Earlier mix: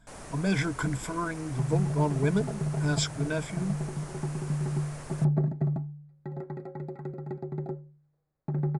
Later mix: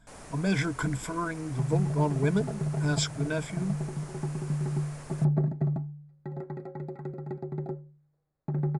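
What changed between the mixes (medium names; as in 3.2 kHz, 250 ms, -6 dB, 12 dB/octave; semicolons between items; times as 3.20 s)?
first sound -3.5 dB; reverb: on, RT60 0.50 s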